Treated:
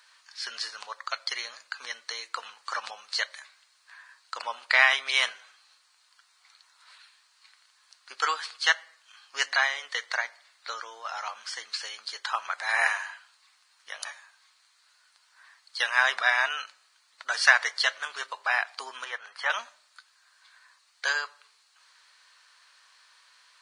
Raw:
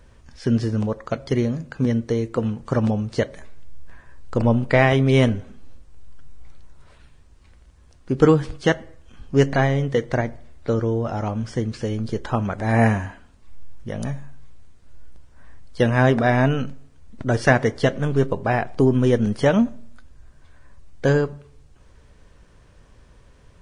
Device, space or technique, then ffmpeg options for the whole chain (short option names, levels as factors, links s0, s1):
headphones lying on a table: -filter_complex "[0:a]highpass=f=1100:w=0.5412,highpass=f=1100:w=1.3066,equalizer=f=4300:t=o:w=0.32:g=11,asettb=1/sr,asplit=3[s0][s1][s2];[s0]atrim=end=19.044[s3];[s1]atrim=start=19.04:end=19.5,asetpts=PTS-STARTPTS,afade=t=in:d=0.004:c=qsin,afade=t=out:st=0.456:d=0.004:c=qsin,acrossover=split=460 2300:gain=0.178 1 0.178[s4][s5][s6];[s4][s5][s6]amix=inputs=3:normalize=0[s7];[s2]atrim=start=19.496[s8];[s3][s7]acrossfade=d=0.004:c1=hsin:c2=qsin[s9];[s9][s8]acrossfade=d=0.004:c1=qsin:c2=hsin,volume=1.41"